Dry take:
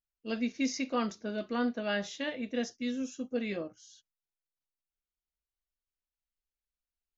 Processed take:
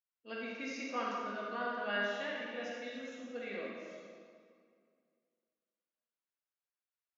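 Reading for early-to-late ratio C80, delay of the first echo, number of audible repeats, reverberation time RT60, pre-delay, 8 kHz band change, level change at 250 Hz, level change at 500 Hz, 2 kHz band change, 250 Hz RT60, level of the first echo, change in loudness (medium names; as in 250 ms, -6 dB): 0.0 dB, no echo, no echo, 2.1 s, 34 ms, no reading, -12.0 dB, -4.0 dB, +0.5 dB, 2.2 s, no echo, -5.0 dB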